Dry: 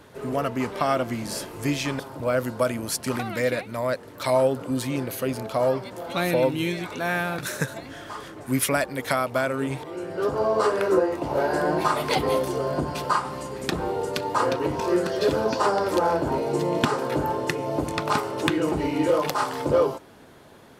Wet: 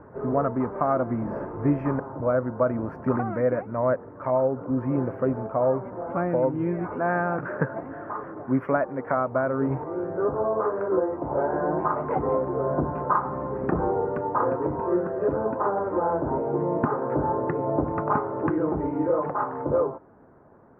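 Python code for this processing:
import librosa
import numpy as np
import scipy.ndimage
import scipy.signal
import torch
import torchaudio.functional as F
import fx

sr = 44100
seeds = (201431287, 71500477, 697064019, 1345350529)

y = fx.highpass(x, sr, hz=180.0, slope=6, at=(6.95, 9.17))
y = scipy.signal.sosfilt(scipy.signal.cheby2(4, 50, 3500.0, 'lowpass', fs=sr, output='sos'), y)
y = fx.rider(y, sr, range_db=5, speed_s=0.5)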